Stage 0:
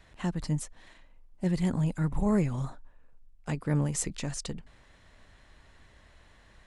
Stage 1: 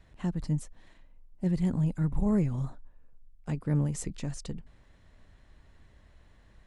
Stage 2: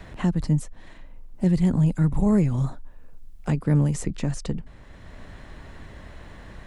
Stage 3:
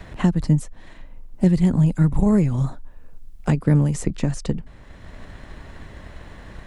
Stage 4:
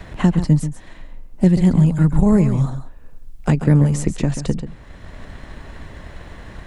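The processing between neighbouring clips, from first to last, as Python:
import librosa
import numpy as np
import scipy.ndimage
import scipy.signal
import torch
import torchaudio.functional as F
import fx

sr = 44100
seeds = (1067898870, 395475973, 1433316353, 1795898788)

y1 = fx.low_shelf(x, sr, hz=470.0, db=9.0)
y1 = y1 * librosa.db_to_amplitude(-7.5)
y2 = fx.band_squash(y1, sr, depth_pct=40)
y2 = y2 * librosa.db_to_amplitude(8.0)
y3 = fx.transient(y2, sr, attack_db=4, sustain_db=0)
y3 = y3 * librosa.db_to_amplitude(2.0)
y4 = y3 + 10.0 ** (-10.5 / 20.0) * np.pad(y3, (int(136 * sr / 1000.0), 0))[:len(y3)]
y4 = y4 * librosa.db_to_amplitude(3.0)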